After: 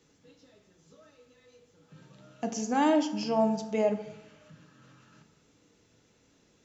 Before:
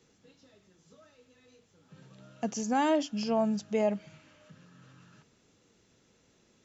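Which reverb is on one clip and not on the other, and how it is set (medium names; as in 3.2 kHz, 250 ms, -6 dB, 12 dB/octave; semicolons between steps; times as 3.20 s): FDN reverb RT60 0.89 s, low-frequency decay 1.1×, high-frequency decay 0.55×, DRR 6 dB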